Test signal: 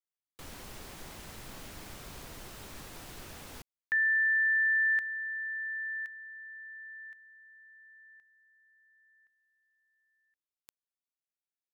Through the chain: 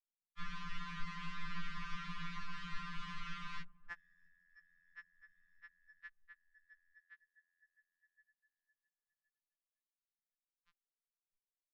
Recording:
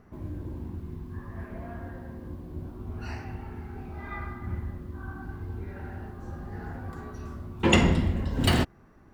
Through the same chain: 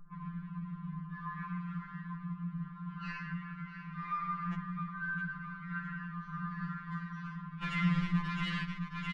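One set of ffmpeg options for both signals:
-filter_complex "[0:a]asplit=2[a][b];[b]acrusher=bits=3:mix=0:aa=0.000001,volume=-6dB[c];[a][c]amix=inputs=2:normalize=0,acrossover=split=310 5600:gain=0.112 1 0.0708[d][e][f];[d][e][f]amix=inputs=3:normalize=0,aecho=1:1:662|1324|1986|2648|3310:0.224|0.114|0.0582|0.0297|0.0151,afftfilt=real='re*(1-between(b*sr/4096,210,920))':imag='im*(1-between(b*sr/4096,210,920))':win_size=4096:overlap=0.75,acompressor=threshold=-41dB:ratio=4:attack=2.5:release=79:knee=1:detection=peak,asoftclip=type=tanh:threshold=-34dB,aemphasis=mode=reproduction:type=riaa,acontrast=81,anlmdn=0.00251,afftfilt=real='re*2.83*eq(mod(b,8),0)':imag='im*2.83*eq(mod(b,8),0)':win_size=2048:overlap=0.75,volume=2.5dB"

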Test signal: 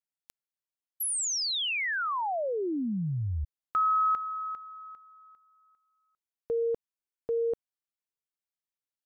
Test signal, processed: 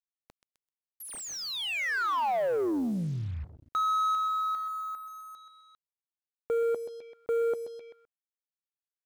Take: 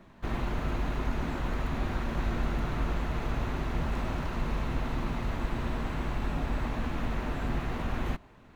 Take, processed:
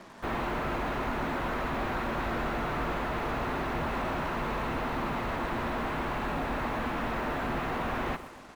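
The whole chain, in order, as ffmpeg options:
-filter_complex "[0:a]aecho=1:1:129|258|387|516:0.15|0.0718|0.0345|0.0165,asplit=2[a][b];[b]highpass=f=720:p=1,volume=22dB,asoftclip=type=tanh:threshold=-17dB[c];[a][c]amix=inputs=2:normalize=0,lowpass=f=1.4k:p=1,volume=-6dB,acrusher=bits=7:mix=0:aa=0.5,volume=-3.5dB"

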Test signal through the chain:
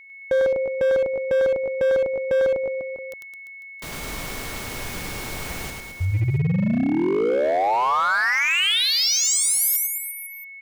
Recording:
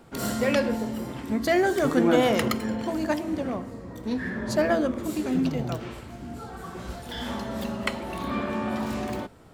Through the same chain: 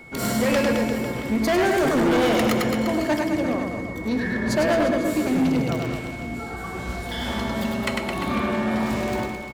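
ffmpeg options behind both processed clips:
-af "aeval=exprs='val(0)+0.00447*sin(2*PI*2200*n/s)':c=same,aecho=1:1:100|215|347.2|499.3|674.2:0.631|0.398|0.251|0.158|0.1,volume=20dB,asoftclip=hard,volume=-20dB,volume=3.5dB"

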